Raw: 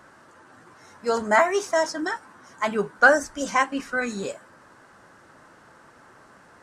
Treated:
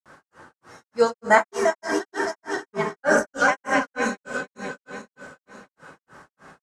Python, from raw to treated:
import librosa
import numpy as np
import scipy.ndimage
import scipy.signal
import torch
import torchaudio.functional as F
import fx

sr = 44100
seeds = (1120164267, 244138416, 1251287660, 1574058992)

y = fx.reverse_delay_fb(x, sr, ms=229, feedback_pct=65, wet_db=-5.5)
y = fx.rev_fdn(y, sr, rt60_s=1.2, lf_ratio=0.8, hf_ratio=0.55, size_ms=37.0, drr_db=3.5)
y = fx.granulator(y, sr, seeds[0], grain_ms=237.0, per_s=3.3, spray_ms=100.0, spread_st=0)
y = F.gain(torch.from_numpy(y), 3.0).numpy()